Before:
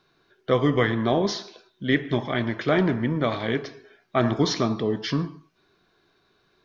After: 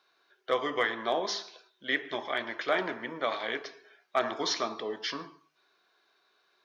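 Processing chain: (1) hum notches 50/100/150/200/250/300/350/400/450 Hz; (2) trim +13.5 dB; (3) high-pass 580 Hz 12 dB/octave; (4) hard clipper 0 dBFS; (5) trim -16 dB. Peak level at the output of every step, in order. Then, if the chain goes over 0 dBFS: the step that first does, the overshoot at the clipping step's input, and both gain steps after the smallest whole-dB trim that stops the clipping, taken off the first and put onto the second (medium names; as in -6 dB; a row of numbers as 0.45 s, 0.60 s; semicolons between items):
-6.5 dBFS, +7.0 dBFS, +3.0 dBFS, 0.0 dBFS, -16.0 dBFS; step 2, 3.0 dB; step 2 +10.5 dB, step 5 -13 dB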